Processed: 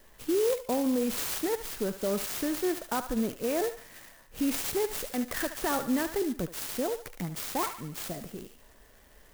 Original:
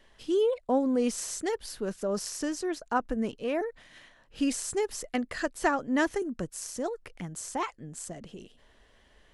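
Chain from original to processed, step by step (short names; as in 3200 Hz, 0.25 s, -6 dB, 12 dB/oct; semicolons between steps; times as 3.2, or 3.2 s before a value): limiter -24.5 dBFS, peak gain reduction 11.5 dB; thinning echo 72 ms, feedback 58%, high-pass 870 Hz, level -8 dB; clock jitter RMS 0.076 ms; gain +3.5 dB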